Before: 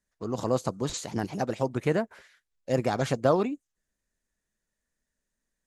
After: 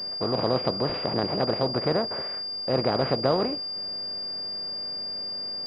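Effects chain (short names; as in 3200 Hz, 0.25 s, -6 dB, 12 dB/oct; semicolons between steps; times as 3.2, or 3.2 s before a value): per-bin compression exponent 0.4; pulse-width modulation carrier 4800 Hz; gain -3.5 dB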